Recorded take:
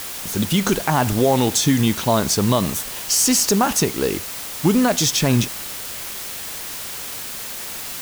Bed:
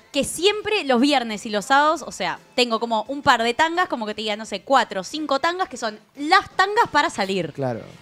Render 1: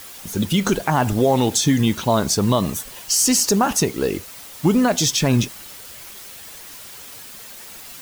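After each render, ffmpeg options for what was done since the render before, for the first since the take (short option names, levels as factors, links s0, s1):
-af "afftdn=nr=9:nf=-31"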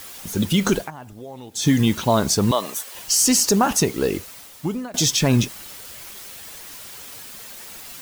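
-filter_complex "[0:a]asettb=1/sr,asplit=3[s0][s1][s2];[s0]atrim=end=2.514[s3];[s1]atrim=start=2.51:end=2.95,asetpts=PTS-STARTPTS,afade=t=in:d=0.004:c=qsin,afade=t=out:st=0.436:d=0.004:c=qsin,highpass=490[s4];[s2]atrim=start=2.946[s5];[s3][s4]acrossfade=d=0.004:c1=hsin:c2=qsin[s6];[s6][s5]acrossfade=d=0.004:c1=qsin:c2=hsin,asplit=4[s7][s8][s9][s10];[s7]atrim=end=0.91,asetpts=PTS-STARTPTS,afade=t=out:st=0.78:d=0.13:silence=0.0944061[s11];[s8]atrim=start=0.91:end=1.54,asetpts=PTS-STARTPTS,volume=0.0944[s12];[s9]atrim=start=1.54:end=4.94,asetpts=PTS-STARTPTS,afade=t=in:d=0.13:silence=0.0944061,afade=t=out:st=2.62:d=0.78:silence=0.0707946[s13];[s10]atrim=start=4.94,asetpts=PTS-STARTPTS,afade=t=in:d=0.004:c=hsin:silence=0.0707946[s14];[s11][s12][s13][s14]concat=n=4:v=0:a=1"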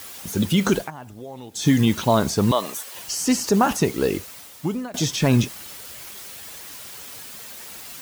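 -filter_complex "[0:a]acrossover=split=2600[s0][s1];[s1]acompressor=threshold=0.0562:ratio=4:attack=1:release=60[s2];[s0][s2]amix=inputs=2:normalize=0,highpass=44"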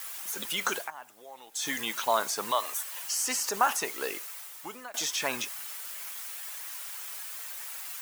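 -af "highpass=990,equalizer=f=4200:t=o:w=1.5:g=-5.5"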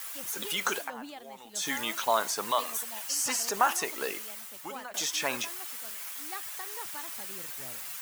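-filter_complex "[1:a]volume=0.0473[s0];[0:a][s0]amix=inputs=2:normalize=0"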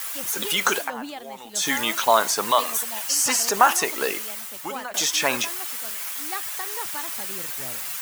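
-af "volume=2.66"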